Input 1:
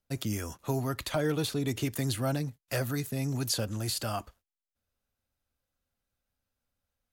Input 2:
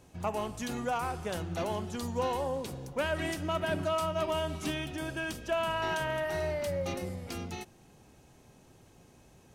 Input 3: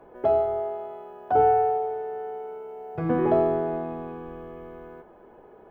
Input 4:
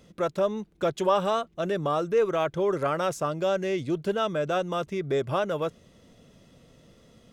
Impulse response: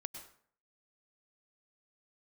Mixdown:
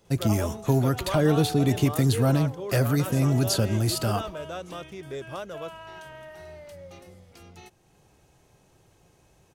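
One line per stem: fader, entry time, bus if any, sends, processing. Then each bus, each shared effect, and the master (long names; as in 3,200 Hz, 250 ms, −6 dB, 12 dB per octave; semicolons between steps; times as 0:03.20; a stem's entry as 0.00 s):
+2.5 dB, 0.00 s, send −15 dB, low-shelf EQ 450 Hz +7 dB
−1.0 dB, 0.05 s, no send, parametric band 240 Hz −9 dB 0.44 octaves; automatic ducking −10 dB, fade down 1.00 s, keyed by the fourth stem
−16.5 dB, 0.00 s, no send, no processing
−10.0 dB, 0.00 s, no send, high-shelf EQ 3,800 Hz +8 dB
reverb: on, RT60 0.55 s, pre-delay 93 ms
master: no processing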